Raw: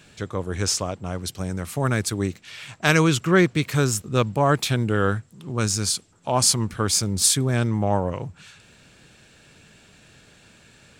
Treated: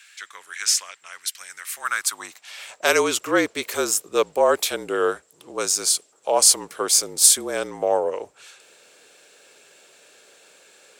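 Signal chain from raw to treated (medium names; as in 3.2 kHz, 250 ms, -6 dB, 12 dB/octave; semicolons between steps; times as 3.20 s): treble shelf 6.4 kHz +11.5 dB; frequency shift -40 Hz; high-pass sweep 1.8 kHz -> 480 Hz, 1.68–2.84 s; trim -2 dB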